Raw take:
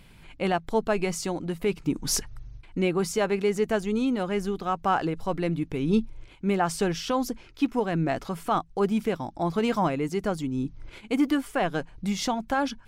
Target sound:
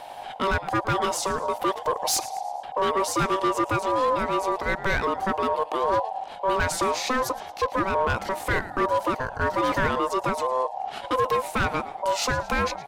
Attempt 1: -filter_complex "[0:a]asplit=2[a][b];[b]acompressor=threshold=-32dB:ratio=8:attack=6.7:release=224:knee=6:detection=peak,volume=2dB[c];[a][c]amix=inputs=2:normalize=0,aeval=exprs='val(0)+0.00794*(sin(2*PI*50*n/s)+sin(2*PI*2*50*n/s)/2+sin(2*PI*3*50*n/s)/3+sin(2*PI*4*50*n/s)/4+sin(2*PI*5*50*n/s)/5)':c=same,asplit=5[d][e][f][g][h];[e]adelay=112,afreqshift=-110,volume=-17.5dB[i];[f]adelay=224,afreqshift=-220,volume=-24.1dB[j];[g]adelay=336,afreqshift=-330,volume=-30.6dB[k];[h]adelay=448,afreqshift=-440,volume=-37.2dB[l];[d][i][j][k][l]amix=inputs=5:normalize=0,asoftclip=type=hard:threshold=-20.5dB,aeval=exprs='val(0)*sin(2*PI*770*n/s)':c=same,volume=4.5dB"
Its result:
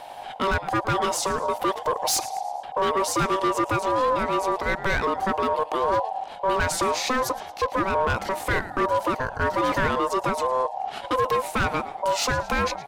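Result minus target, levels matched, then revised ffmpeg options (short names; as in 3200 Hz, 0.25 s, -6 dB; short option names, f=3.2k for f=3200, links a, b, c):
compressor: peak gain reduction -6 dB
-filter_complex "[0:a]asplit=2[a][b];[b]acompressor=threshold=-39dB:ratio=8:attack=6.7:release=224:knee=6:detection=peak,volume=2dB[c];[a][c]amix=inputs=2:normalize=0,aeval=exprs='val(0)+0.00794*(sin(2*PI*50*n/s)+sin(2*PI*2*50*n/s)/2+sin(2*PI*3*50*n/s)/3+sin(2*PI*4*50*n/s)/4+sin(2*PI*5*50*n/s)/5)':c=same,asplit=5[d][e][f][g][h];[e]adelay=112,afreqshift=-110,volume=-17.5dB[i];[f]adelay=224,afreqshift=-220,volume=-24.1dB[j];[g]adelay=336,afreqshift=-330,volume=-30.6dB[k];[h]adelay=448,afreqshift=-440,volume=-37.2dB[l];[d][i][j][k][l]amix=inputs=5:normalize=0,asoftclip=type=hard:threshold=-20.5dB,aeval=exprs='val(0)*sin(2*PI*770*n/s)':c=same,volume=4.5dB"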